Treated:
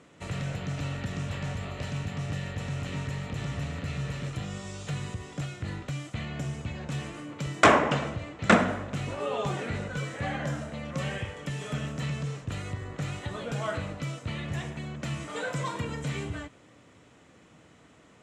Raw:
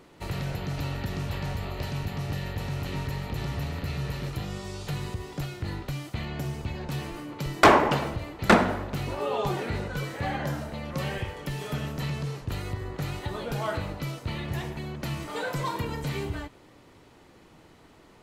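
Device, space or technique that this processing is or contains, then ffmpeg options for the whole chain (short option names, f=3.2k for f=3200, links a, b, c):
car door speaker: -filter_complex "[0:a]asettb=1/sr,asplit=3[a][b][c];[a]atrim=end=7.794[d];[b]atrim=start=7.79:end=8.52,asetpts=PTS-STARTPTS,afade=t=in:d=0.004:c=qsin,afade=t=out:st=0.726:d=0.004:c=qsin,lowpass=8.1k[e];[c]atrim=start=8.516[f];[d][e]acrossfade=d=0.004:c1=hsin:c2=qsin[g];[g][f]acrossfade=d=0.004:c1=qsin:c2=hsin,highpass=83,equalizer=f=370:t=q:w=4:g=-7,equalizer=f=880:t=q:w=4:g=-7,equalizer=f=4.5k:t=q:w=4:g=-8,equalizer=f=7.4k:t=q:w=4:g=5,lowpass=f=8.9k:w=0.5412,lowpass=f=8.9k:w=1.3066"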